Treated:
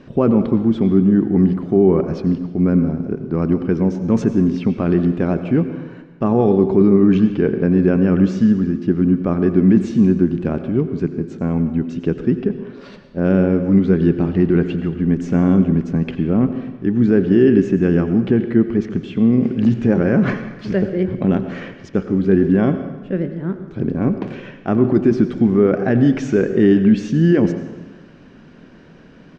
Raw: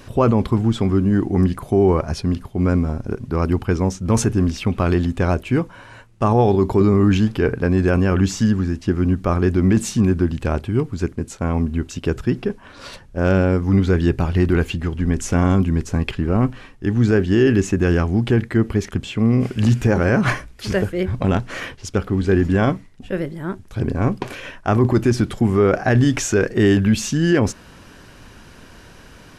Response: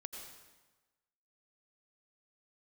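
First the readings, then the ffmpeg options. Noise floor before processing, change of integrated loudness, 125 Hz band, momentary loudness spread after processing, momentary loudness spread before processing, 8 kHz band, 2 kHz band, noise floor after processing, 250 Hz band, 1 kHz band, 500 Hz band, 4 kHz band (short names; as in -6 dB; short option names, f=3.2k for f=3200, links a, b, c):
-44 dBFS, +2.0 dB, -1.0 dB, 10 LU, 9 LU, under -15 dB, -5.0 dB, -43 dBFS, +4.5 dB, -4.5 dB, +2.0 dB, n/a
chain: -filter_complex "[0:a]firequalizer=gain_entry='entry(100,0);entry(160,15);entry(920,3);entry(1700,5);entry(5900,-5);entry(11000,-27)':delay=0.05:min_phase=1,asplit=2[a][b];[1:a]atrim=start_sample=2205[c];[b][c]afir=irnorm=-1:irlink=0,volume=2.5dB[d];[a][d]amix=inputs=2:normalize=0,volume=-14.5dB"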